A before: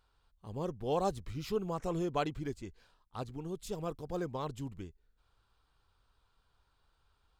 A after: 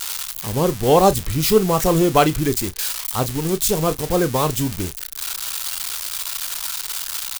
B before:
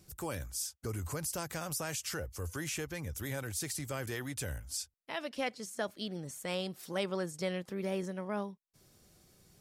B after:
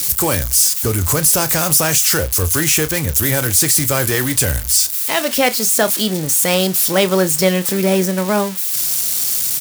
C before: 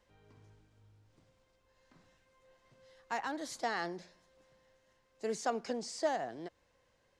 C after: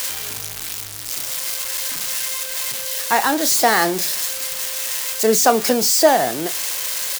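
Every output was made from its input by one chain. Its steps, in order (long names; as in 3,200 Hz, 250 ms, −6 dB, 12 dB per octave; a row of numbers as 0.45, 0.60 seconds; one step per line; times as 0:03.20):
spike at every zero crossing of −31.5 dBFS
double-tracking delay 32 ms −13.5 dB
normalise the peak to −1.5 dBFS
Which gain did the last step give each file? +18.0, +19.5, +19.0 decibels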